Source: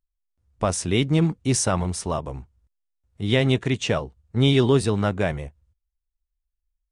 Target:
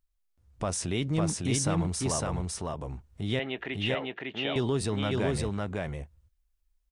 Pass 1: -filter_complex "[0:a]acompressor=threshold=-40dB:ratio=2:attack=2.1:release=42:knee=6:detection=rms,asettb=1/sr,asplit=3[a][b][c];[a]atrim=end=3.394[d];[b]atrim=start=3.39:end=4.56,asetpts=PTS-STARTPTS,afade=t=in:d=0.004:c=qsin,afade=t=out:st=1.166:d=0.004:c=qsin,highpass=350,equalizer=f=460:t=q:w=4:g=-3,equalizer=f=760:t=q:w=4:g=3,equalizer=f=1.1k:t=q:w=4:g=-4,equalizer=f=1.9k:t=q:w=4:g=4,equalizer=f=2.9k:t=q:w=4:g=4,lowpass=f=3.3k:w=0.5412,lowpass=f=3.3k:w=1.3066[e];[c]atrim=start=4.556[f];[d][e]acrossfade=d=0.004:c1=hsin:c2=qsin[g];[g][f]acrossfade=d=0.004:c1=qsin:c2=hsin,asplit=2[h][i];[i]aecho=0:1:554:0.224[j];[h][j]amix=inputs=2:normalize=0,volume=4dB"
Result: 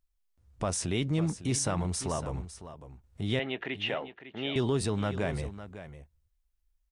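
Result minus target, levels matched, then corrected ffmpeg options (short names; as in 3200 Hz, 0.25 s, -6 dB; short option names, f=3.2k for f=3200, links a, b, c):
echo-to-direct -11 dB
-filter_complex "[0:a]acompressor=threshold=-40dB:ratio=2:attack=2.1:release=42:knee=6:detection=rms,asettb=1/sr,asplit=3[a][b][c];[a]atrim=end=3.394[d];[b]atrim=start=3.39:end=4.56,asetpts=PTS-STARTPTS,afade=t=in:d=0.004:c=qsin,afade=t=out:st=1.166:d=0.004:c=qsin,highpass=350,equalizer=f=460:t=q:w=4:g=-3,equalizer=f=760:t=q:w=4:g=3,equalizer=f=1.1k:t=q:w=4:g=-4,equalizer=f=1.9k:t=q:w=4:g=4,equalizer=f=2.9k:t=q:w=4:g=4,lowpass=f=3.3k:w=0.5412,lowpass=f=3.3k:w=1.3066[e];[c]atrim=start=4.556[f];[d][e]acrossfade=d=0.004:c1=hsin:c2=qsin[g];[g][f]acrossfade=d=0.004:c1=qsin:c2=hsin,asplit=2[h][i];[i]aecho=0:1:554:0.794[j];[h][j]amix=inputs=2:normalize=0,volume=4dB"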